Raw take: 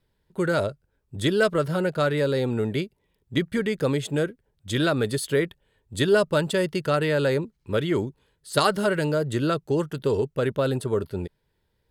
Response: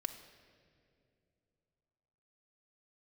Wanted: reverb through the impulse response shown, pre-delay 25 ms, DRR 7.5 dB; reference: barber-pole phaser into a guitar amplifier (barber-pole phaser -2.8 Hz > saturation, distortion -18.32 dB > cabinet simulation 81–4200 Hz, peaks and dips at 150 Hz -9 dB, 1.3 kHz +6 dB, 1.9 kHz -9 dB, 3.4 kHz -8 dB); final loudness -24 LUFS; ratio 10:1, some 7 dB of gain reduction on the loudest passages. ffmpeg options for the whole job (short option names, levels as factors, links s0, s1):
-filter_complex "[0:a]acompressor=threshold=0.0794:ratio=10,asplit=2[s0][s1];[1:a]atrim=start_sample=2205,adelay=25[s2];[s1][s2]afir=irnorm=-1:irlink=0,volume=0.473[s3];[s0][s3]amix=inputs=2:normalize=0,asplit=2[s4][s5];[s5]afreqshift=-2.8[s6];[s4][s6]amix=inputs=2:normalize=1,asoftclip=threshold=0.0891,highpass=81,equalizer=f=150:t=q:w=4:g=-9,equalizer=f=1300:t=q:w=4:g=6,equalizer=f=1900:t=q:w=4:g=-9,equalizer=f=3400:t=q:w=4:g=-8,lowpass=f=4200:w=0.5412,lowpass=f=4200:w=1.3066,volume=2.82"